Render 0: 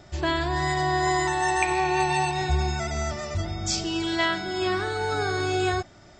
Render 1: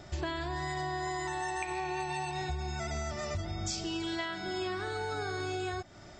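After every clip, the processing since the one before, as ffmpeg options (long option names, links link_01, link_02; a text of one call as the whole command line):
ffmpeg -i in.wav -af "acompressor=threshold=-32dB:ratio=12" out.wav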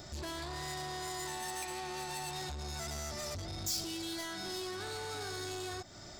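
ffmpeg -i in.wav -af "asoftclip=type=tanh:threshold=-39dB,aexciter=amount=1.7:drive=8.6:freq=3800" out.wav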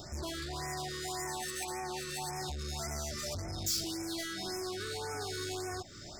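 ffmpeg -i in.wav -af "afftfilt=real='re*(1-between(b*sr/1024,750*pow(3700/750,0.5+0.5*sin(2*PI*1.8*pts/sr))/1.41,750*pow(3700/750,0.5+0.5*sin(2*PI*1.8*pts/sr))*1.41))':imag='im*(1-between(b*sr/1024,750*pow(3700/750,0.5+0.5*sin(2*PI*1.8*pts/sr))/1.41,750*pow(3700/750,0.5+0.5*sin(2*PI*1.8*pts/sr))*1.41))':win_size=1024:overlap=0.75,volume=2.5dB" out.wav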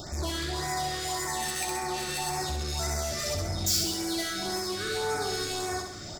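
ffmpeg -i in.wav -af "aecho=1:1:66|132|198|264|330|396|462:0.562|0.304|0.164|0.0885|0.0478|0.0258|0.0139,volume=6dB" out.wav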